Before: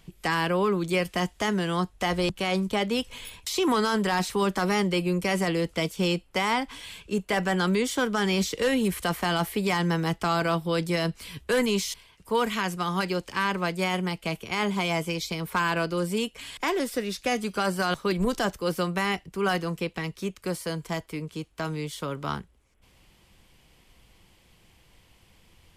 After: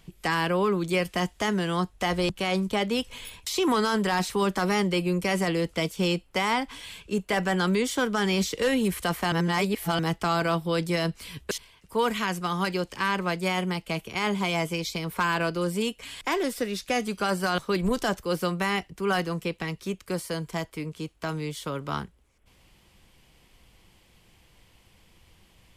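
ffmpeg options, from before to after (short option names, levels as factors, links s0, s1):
-filter_complex "[0:a]asplit=4[s0][s1][s2][s3];[s0]atrim=end=9.322[s4];[s1]atrim=start=9.318:end=9.992,asetpts=PTS-STARTPTS,areverse[s5];[s2]atrim=start=9.988:end=11.512[s6];[s3]atrim=start=11.868[s7];[s4][s5]acrossfade=d=0.004:c1=hsin:c2=hsin[s8];[s8][s6]acrossfade=d=0.004:c1=hsin:c2=hsin[s9];[s9][s7]acrossfade=d=0.004:c1=hsin:c2=hsin"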